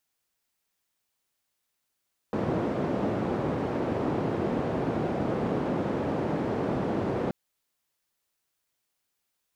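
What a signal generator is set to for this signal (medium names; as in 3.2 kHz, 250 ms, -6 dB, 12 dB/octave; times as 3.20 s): noise band 120–450 Hz, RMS -28.5 dBFS 4.98 s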